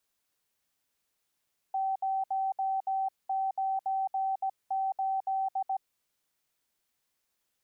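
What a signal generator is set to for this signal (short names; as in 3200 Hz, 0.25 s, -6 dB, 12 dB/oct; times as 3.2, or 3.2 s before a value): Morse "098" 17 wpm 771 Hz -27 dBFS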